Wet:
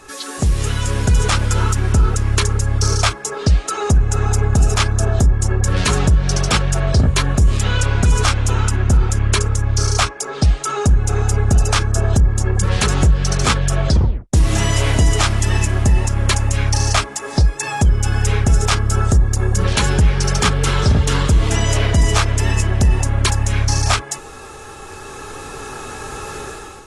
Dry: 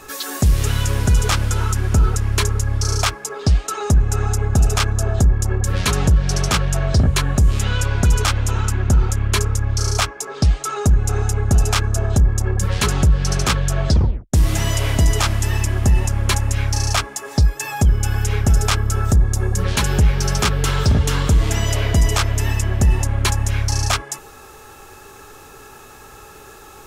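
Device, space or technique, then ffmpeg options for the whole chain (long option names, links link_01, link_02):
low-bitrate web radio: -af "dynaudnorm=framelen=800:gausssize=3:maxgain=14dB,alimiter=limit=-4.5dB:level=0:latency=1:release=347,volume=-2dB" -ar 24000 -c:a aac -b:a 32k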